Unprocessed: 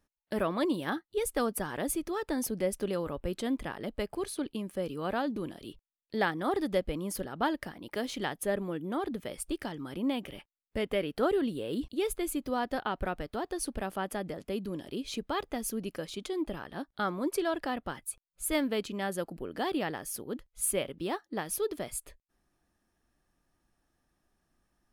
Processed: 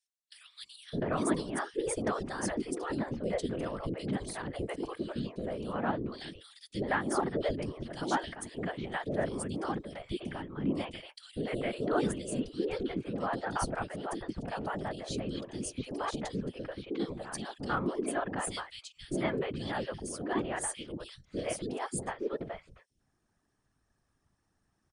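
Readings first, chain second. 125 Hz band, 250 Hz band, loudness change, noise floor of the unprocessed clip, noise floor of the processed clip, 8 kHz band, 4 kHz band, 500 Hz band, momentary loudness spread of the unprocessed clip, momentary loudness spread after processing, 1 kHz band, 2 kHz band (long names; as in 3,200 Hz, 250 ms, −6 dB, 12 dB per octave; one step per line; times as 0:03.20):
+3.5 dB, −1.5 dB, −1.5 dB, −83 dBFS, −78 dBFS, −3.0 dB, −2.5 dB, −2.0 dB, 8 LU, 9 LU, −0.5 dB, −1.0 dB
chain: random phases in short frames
linear-phase brick-wall low-pass 10,000 Hz
three-band delay without the direct sound highs, lows, mids 610/700 ms, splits 480/2,900 Hz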